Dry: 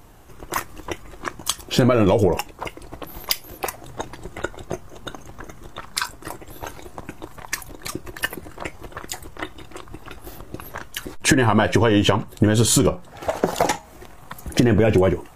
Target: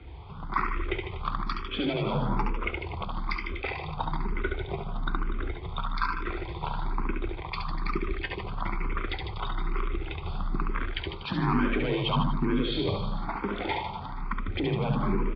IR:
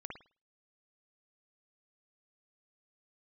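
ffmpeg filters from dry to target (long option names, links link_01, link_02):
-filter_complex "[0:a]aresample=11025,asoftclip=type=hard:threshold=-14.5dB,aresample=44100,equalizer=frequency=92:width_type=o:width=0.29:gain=-8,areverse,acompressor=threshold=-29dB:ratio=4,areverse,lowpass=frequency=3700:width=0.5412,lowpass=frequency=3700:width=1.3066,aecho=1:1:0.9:0.62,aecho=1:1:70|150.5|243.1|349.5|472:0.631|0.398|0.251|0.158|0.1,afreqshift=30,asplit=2[link_01][link_02];[link_02]afreqshift=1.1[link_03];[link_01][link_03]amix=inputs=2:normalize=1,volume=2.5dB"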